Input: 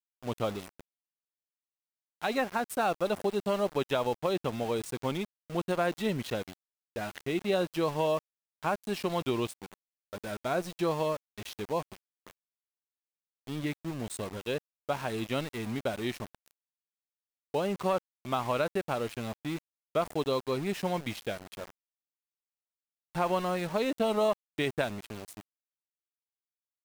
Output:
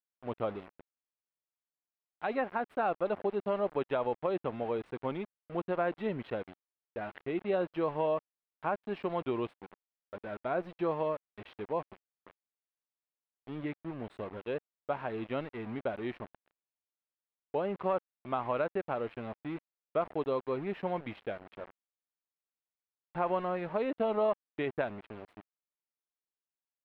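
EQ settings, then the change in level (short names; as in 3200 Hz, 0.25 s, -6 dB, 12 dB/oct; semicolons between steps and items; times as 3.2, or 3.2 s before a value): air absorption 480 m; tone controls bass -7 dB, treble -7 dB; 0.0 dB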